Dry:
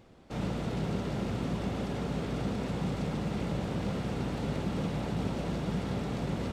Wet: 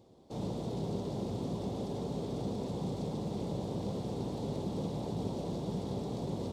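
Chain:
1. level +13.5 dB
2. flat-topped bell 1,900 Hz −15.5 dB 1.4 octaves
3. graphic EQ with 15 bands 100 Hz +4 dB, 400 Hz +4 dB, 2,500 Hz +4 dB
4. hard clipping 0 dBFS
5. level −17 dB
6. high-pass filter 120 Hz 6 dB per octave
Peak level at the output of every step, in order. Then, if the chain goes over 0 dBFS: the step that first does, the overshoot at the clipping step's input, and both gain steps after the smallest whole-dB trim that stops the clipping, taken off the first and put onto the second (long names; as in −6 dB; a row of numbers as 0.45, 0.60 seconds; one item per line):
−5.0, −5.5, −3.5, −3.5, −20.5, −23.5 dBFS
no step passes full scale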